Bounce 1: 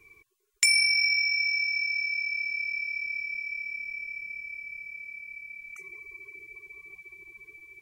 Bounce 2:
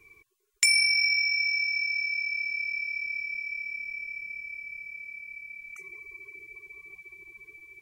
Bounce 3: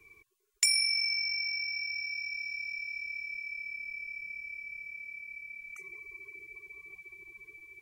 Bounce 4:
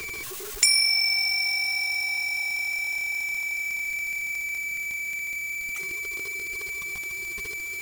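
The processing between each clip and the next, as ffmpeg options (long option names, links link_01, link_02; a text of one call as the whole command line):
ffmpeg -i in.wav -af anull out.wav
ffmpeg -i in.wav -filter_complex "[0:a]acrossover=split=160|3000[link_01][link_02][link_03];[link_02]acompressor=threshold=-39dB:ratio=6[link_04];[link_01][link_04][link_03]amix=inputs=3:normalize=0,volume=-2dB" out.wav
ffmpeg -i in.wav -af "aeval=exprs='val(0)+0.5*0.0178*sgn(val(0))':channel_layout=same,volume=5.5dB" out.wav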